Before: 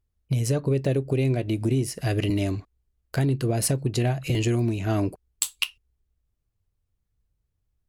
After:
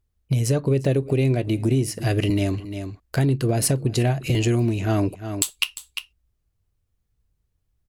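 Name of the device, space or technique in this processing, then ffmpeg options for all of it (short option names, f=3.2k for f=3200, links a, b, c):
ducked delay: -filter_complex "[0:a]asplit=3[a][b][c];[b]adelay=350,volume=-8dB[d];[c]apad=whole_len=363185[e];[d][e]sidechaincompress=threshold=-41dB:ratio=4:attack=38:release=181[f];[a][f]amix=inputs=2:normalize=0,volume=3dB"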